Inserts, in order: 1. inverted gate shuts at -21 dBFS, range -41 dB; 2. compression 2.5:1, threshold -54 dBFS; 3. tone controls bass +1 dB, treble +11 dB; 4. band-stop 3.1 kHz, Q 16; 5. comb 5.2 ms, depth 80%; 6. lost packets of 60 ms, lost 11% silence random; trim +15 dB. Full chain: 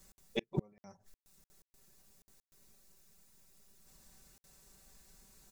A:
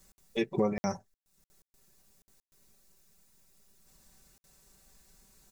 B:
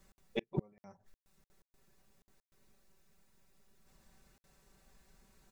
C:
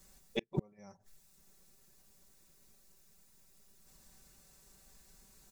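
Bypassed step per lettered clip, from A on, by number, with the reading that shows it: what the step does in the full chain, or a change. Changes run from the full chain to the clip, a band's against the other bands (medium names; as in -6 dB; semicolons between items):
1, momentary loudness spread change -12 LU; 3, 8 kHz band -9.5 dB; 6, momentary loudness spread change +1 LU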